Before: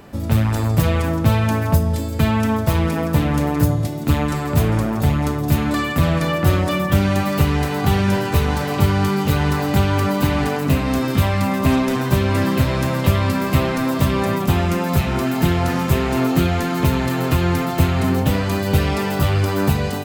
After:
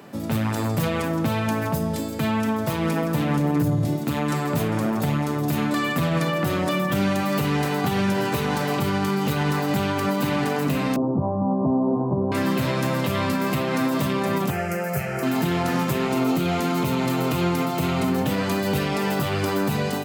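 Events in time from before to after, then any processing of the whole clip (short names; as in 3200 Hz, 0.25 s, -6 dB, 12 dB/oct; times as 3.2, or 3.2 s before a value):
3.37–3.96 low shelf 320 Hz +9.5 dB
10.96–12.32 steep low-pass 980 Hz 48 dB/oct
14.5–15.23 fixed phaser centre 1000 Hz, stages 6
16.05–18.13 notch 1700 Hz, Q 6.4
whole clip: HPF 130 Hz 24 dB/oct; limiter -13 dBFS; gain -1 dB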